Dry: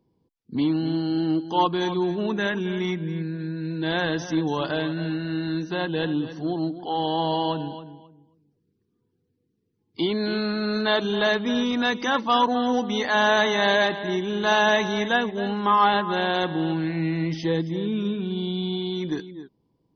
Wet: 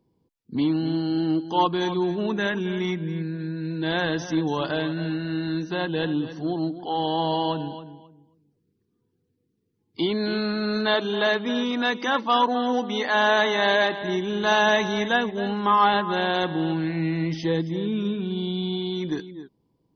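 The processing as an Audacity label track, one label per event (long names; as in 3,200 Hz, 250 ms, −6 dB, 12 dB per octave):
10.940000	14.020000	band-pass filter 210–5,400 Hz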